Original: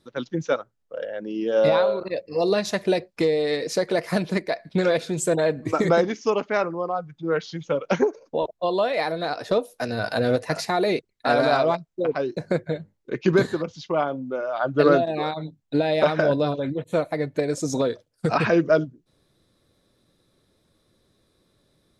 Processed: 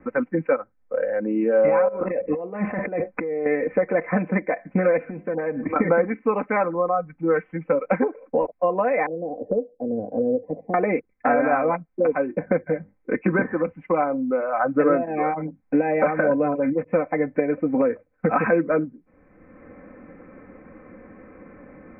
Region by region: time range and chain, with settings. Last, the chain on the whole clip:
1.88–3.46 LPF 2500 Hz + negative-ratio compressor -33 dBFS
5.09–5.76 compressor 5:1, threshold -31 dBFS + de-hum 101.8 Hz, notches 8
9.06–10.74 inverse Chebyshev low-pass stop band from 1300 Hz, stop band 50 dB + low shelf 350 Hz -9 dB
whole clip: steep low-pass 2400 Hz 96 dB/oct; comb 3.9 ms, depth 69%; three-band squash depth 70%

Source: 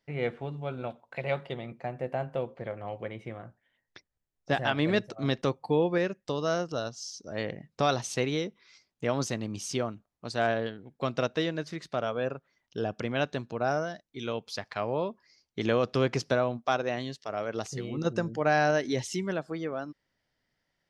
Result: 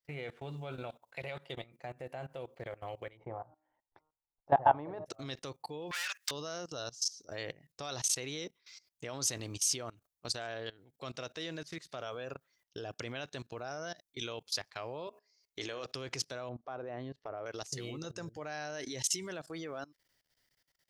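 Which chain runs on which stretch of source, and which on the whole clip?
3.17–5.06 synth low-pass 880 Hz, resonance Q 5.8 + de-hum 154.8 Hz, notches 9
5.91–6.31 overdrive pedal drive 29 dB, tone 3900 Hz, clips at -14.5 dBFS + HPF 1200 Hz 24 dB/oct
15.07–15.86 bell 150 Hz -12 dB 1 oct + de-hum 69.57 Hz, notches 40
16.49–17.46 LPF 1100 Hz + upward compressor, threshold -37 dBFS
whole clip: bell 210 Hz -13 dB 0.27 oct; level quantiser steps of 20 dB; pre-emphasis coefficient 0.8; gain +12 dB

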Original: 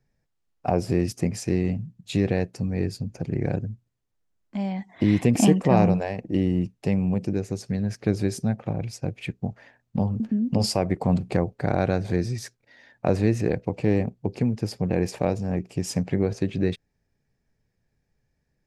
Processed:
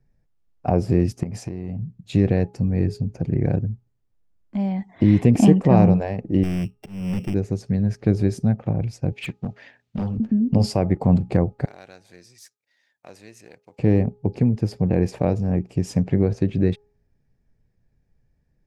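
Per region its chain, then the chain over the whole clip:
1.23–1.82 bell 760 Hz +6.5 dB 0.91 oct + compressor 16:1, threshold -29 dBFS
6.43–7.34 sample sorter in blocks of 16 samples + hard clip -25 dBFS + auto swell 0.286 s
9.12–10.18 weighting filter D + hard clip -25.5 dBFS
11.65–13.79 half-wave gain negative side -3 dB + differentiator
whole clip: tilt -2 dB/oct; de-hum 415.3 Hz, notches 3

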